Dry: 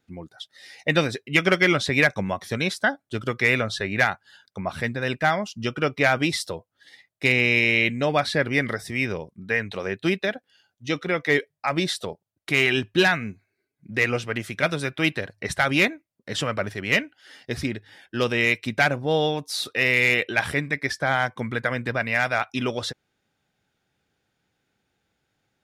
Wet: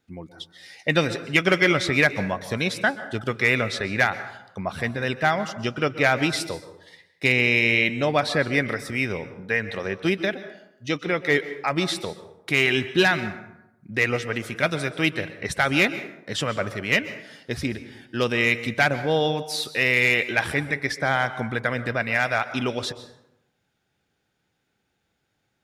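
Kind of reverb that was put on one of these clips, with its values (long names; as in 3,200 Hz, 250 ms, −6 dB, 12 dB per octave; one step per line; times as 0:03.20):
dense smooth reverb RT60 0.85 s, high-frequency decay 0.55×, pre-delay 115 ms, DRR 12.5 dB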